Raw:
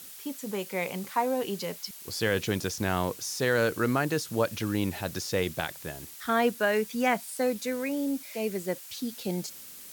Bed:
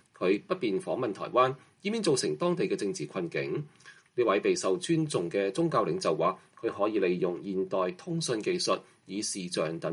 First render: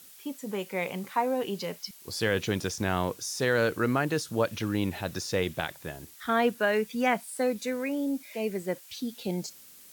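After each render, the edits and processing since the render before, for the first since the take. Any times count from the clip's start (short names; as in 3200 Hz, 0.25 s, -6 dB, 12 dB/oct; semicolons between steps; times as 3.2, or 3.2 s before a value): noise print and reduce 6 dB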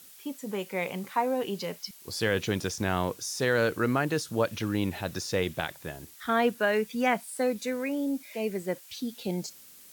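nothing audible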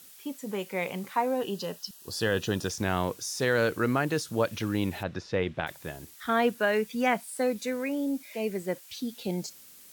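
1.41–2.7 Butterworth band-stop 2200 Hz, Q 4.1; 5.03–5.67 LPF 2800 Hz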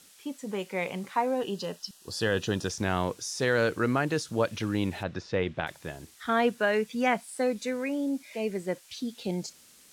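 LPF 9700 Hz 12 dB/oct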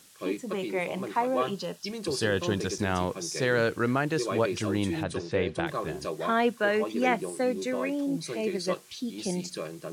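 add bed -6 dB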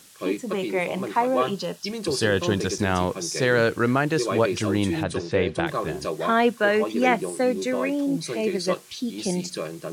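gain +5 dB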